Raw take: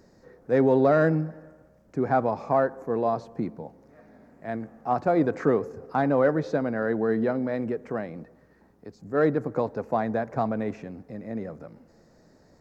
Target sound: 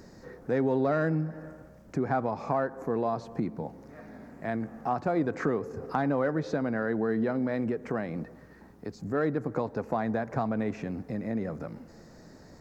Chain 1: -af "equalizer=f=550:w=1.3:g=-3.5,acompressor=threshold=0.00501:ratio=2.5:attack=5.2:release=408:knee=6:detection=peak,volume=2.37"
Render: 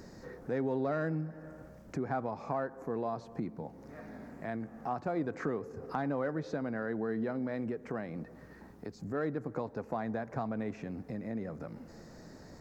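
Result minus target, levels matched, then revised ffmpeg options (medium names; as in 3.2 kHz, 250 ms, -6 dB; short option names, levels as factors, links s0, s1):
compression: peak gain reduction +6.5 dB
-af "equalizer=f=550:w=1.3:g=-3.5,acompressor=threshold=0.0168:ratio=2.5:attack=5.2:release=408:knee=6:detection=peak,volume=2.37"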